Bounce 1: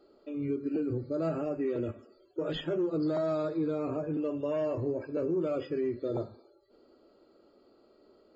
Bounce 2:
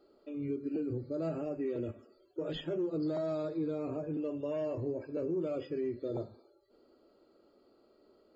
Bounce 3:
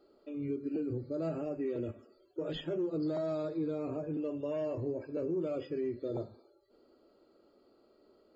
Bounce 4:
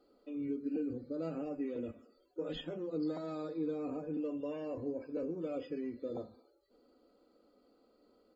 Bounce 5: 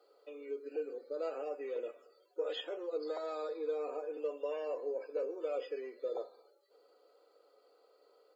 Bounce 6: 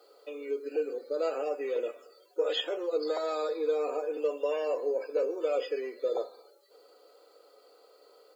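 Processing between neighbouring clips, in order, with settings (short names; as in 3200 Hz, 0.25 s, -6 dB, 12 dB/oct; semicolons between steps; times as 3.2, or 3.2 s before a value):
dynamic EQ 1300 Hz, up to -5 dB, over -50 dBFS, Q 1.4; gain -3.5 dB
nothing audible
comb 4 ms, depth 63%; gain -3.5 dB
elliptic high-pass 420 Hz, stop band 80 dB; gain +4.5 dB
high shelf 3900 Hz +7.5 dB; gain +7.5 dB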